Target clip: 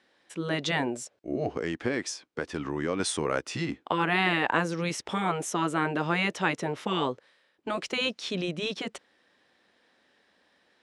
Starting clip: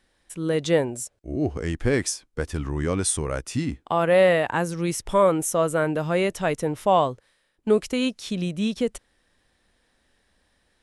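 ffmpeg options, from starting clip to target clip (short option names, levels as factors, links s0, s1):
-filter_complex "[0:a]highpass=240,lowpass=4800,asettb=1/sr,asplit=3[s0][s1][s2];[s0]atrim=end=1.574[s3];[s1]atrim=start=1.57:end=3,asetpts=PTS-STARTPTS,afade=t=in:d=0.004:c=qsin,afade=t=out:st=1.426:d=0.004:c=qsin,acompressor=threshold=0.0251:ratio=2[s4];[s2]atrim=start=2.996[s5];[s3][s4]acrossfade=d=0.004:c1=hsin:c2=qsin[s6];[s6][s5]acrossfade=d=0.004:c1=qsin:c2=hsin,afftfilt=real='re*lt(hypot(re,im),0.316)':imag='im*lt(hypot(re,im),0.316)':win_size=1024:overlap=0.75,volume=1.41"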